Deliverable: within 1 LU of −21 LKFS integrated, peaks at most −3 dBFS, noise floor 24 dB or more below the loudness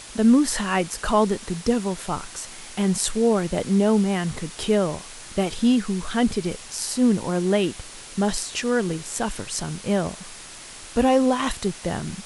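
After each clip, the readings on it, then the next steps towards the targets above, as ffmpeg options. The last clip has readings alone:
background noise floor −41 dBFS; target noise floor −47 dBFS; integrated loudness −23.0 LKFS; sample peak −3.5 dBFS; target loudness −21.0 LKFS
→ -af "afftdn=noise_reduction=6:noise_floor=-41"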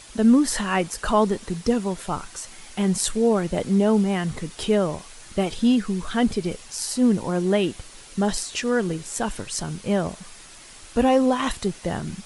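background noise floor −45 dBFS; target noise floor −48 dBFS
→ -af "afftdn=noise_reduction=6:noise_floor=-45"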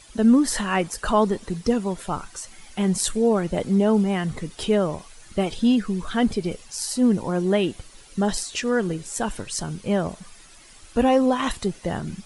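background noise floor −48 dBFS; integrated loudness −23.5 LKFS; sample peak −3.5 dBFS; target loudness −21.0 LKFS
→ -af "volume=2.5dB,alimiter=limit=-3dB:level=0:latency=1"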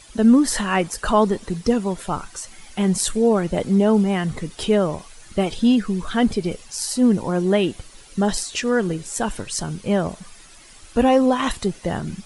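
integrated loudness −21.0 LKFS; sample peak −3.0 dBFS; background noise floor −46 dBFS

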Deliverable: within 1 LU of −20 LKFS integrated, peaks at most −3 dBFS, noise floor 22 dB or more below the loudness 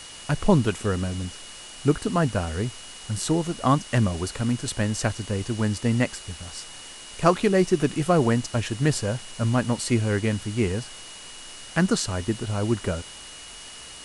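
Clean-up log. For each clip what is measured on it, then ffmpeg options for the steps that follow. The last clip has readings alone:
interfering tone 2,900 Hz; level of the tone −45 dBFS; background noise floor −42 dBFS; target noise floor −47 dBFS; integrated loudness −25.0 LKFS; sample peak −4.5 dBFS; target loudness −20.0 LKFS
→ -af "bandreject=frequency=2900:width=30"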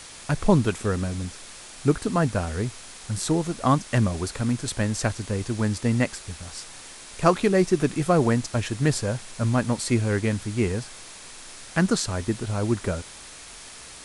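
interfering tone none found; background noise floor −43 dBFS; target noise floor −47 dBFS
→ -af "afftdn=noise_reduction=6:noise_floor=-43"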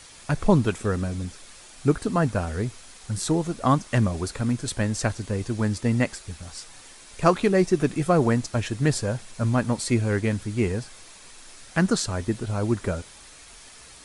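background noise floor −47 dBFS; integrated loudness −25.0 LKFS; sample peak −4.5 dBFS; target loudness −20.0 LKFS
→ -af "volume=5dB,alimiter=limit=-3dB:level=0:latency=1"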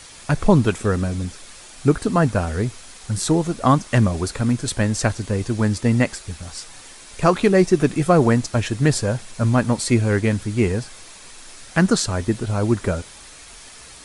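integrated loudness −20.0 LKFS; sample peak −3.0 dBFS; background noise floor −42 dBFS

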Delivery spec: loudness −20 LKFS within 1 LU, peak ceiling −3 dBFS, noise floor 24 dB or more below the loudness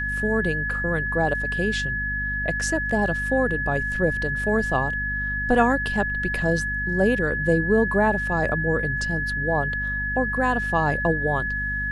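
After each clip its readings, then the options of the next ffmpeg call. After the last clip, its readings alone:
mains hum 50 Hz; hum harmonics up to 250 Hz; level of the hum −29 dBFS; interfering tone 1,700 Hz; level of the tone −25 dBFS; integrated loudness −23.0 LKFS; sample peak −5.0 dBFS; target loudness −20.0 LKFS
→ -af "bandreject=frequency=50:width_type=h:width=4,bandreject=frequency=100:width_type=h:width=4,bandreject=frequency=150:width_type=h:width=4,bandreject=frequency=200:width_type=h:width=4,bandreject=frequency=250:width_type=h:width=4"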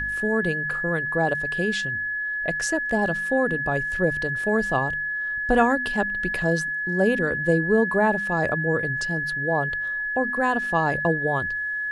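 mains hum none found; interfering tone 1,700 Hz; level of the tone −25 dBFS
→ -af "bandreject=frequency=1700:width=30"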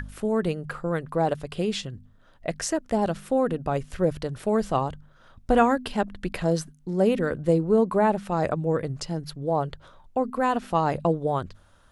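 interfering tone none found; integrated loudness −26.0 LKFS; sample peak −7.5 dBFS; target loudness −20.0 LKFS
→ -af "volume=6dB,alimiter=limit=-3dB:level=0:latency=1"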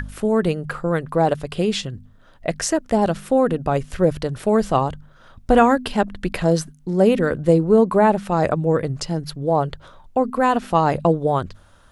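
integrated loudness −20.0 LKFS; sample peak −3.0 dBFS; background noise floor −50 dBFS

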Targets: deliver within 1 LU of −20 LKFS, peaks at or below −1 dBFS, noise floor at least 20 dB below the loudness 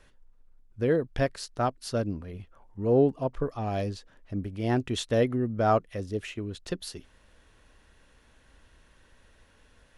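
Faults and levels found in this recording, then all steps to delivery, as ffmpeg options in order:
integrated loudness −29.0 LKFS; sample peak −12.0 dBFS; target loudness −20.0 LKFS
→ -af "volume=9dB"

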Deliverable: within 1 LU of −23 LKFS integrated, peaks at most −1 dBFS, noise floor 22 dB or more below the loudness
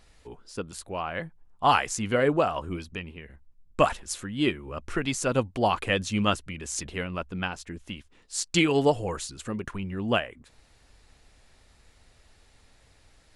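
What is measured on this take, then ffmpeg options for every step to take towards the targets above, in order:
integrated loudness −28.0 LKFS; sample peak −7.0 dBFS; target loudness −23.0 LKFS
→ -af "volume=5dB"

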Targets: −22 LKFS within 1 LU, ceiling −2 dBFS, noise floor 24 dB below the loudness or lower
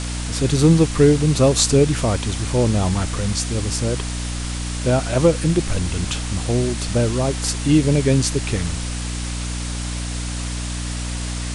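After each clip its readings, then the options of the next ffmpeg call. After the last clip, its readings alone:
mains hum 60 Hz; hum harmonics up to 300 Hz; level of the hum −24 dBFS; background noise floor −26 dBFS; target noise floor −44 dBFS; integrated loudness −20.0 LKFS; sample peak −1.0 dBFS; target loudness −22.0 LKFS
→ -af "bandreject=frequency=60:width_type=h:width=6,bandreject=frequency=120:width_type=h:width=6,bandreject=frequency=180:width_type=h:width=6,bandreject=frequency=240:width_type=h:width=6,bandreject=frequency=300:width_type=h:width=6"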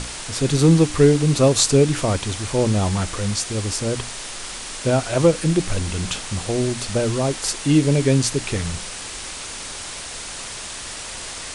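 mains hum none found; background noise floor −33 dBFS; target noise floor −45 dBFS
→ -af "afftdn=noise_reduction=12:noise_floor=-33"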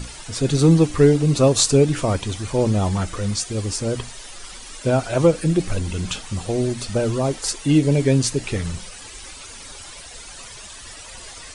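background noise floor −39 dBFS; target noise floor −44 dBFS
→ -af "afftdn=noise_reduction=6:noise_floor=-39"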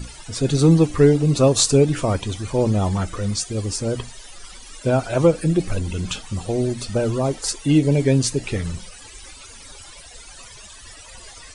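background noise floor −42 dBFS; target noise floor −44 dBFS
→ -af "afftdn=noise_reduction=6:noise_floor=-42"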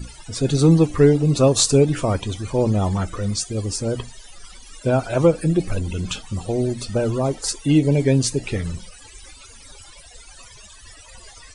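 background noise floor −45 dBFS; integrated loudness −20.0 LKFS; sample peak −2.0 dBFS; target loudness −22.0 LKFS
→ -af "volume=-2dB"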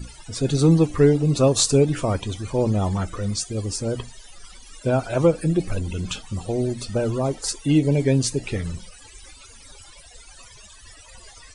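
integrated loudness −22.0 LKFS; sample peak −4.0 dBFS; background noise floor −47 dBFS

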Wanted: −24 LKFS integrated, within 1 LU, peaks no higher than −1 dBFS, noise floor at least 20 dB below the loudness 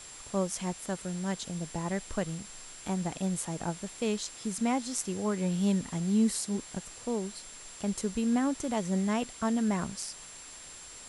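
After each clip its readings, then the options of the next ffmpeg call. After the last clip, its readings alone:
interfering tone 7,400 Hz; level of the tone −48 dBFS; background noise floor −48 dBFS; target noise floor −52 dBFS; integrated loudness −32.0 LKFS; sample peak −15.0 dBFS; target loudness −24.0 LKFS
→ -af "bandreject=frequency=7400:width=30"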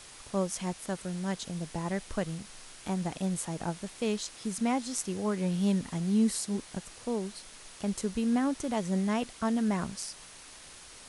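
interfering tone none found; background noise floor −50 dBFS; target noise floor −53 dBFS
→ -af "afftdn=noise_reduction=6:noise_floor=-50"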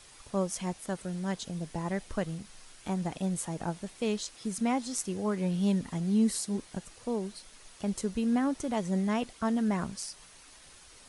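background noise floor −54 dBFS; integrated loudness −32.5 LKFS; sample peak −16.0 dBFS; target loudness −24.0 LKFS
→ -af "volume=8.5dB"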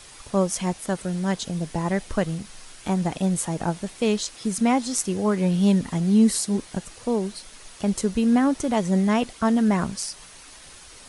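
integrated loudness −24.0 LKFS; sample peak −7.5 dBFS; background noise floor −46 dBFS

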